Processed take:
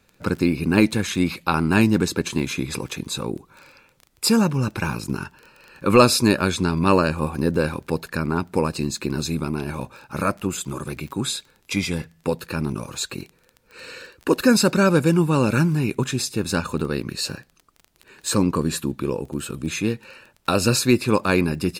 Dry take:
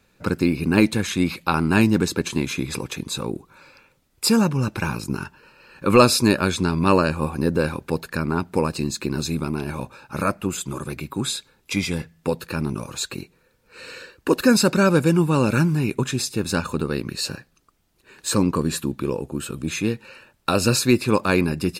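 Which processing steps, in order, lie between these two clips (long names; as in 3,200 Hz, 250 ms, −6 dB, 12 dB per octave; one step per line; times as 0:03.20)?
surface crackle 18 per second −32 dBFS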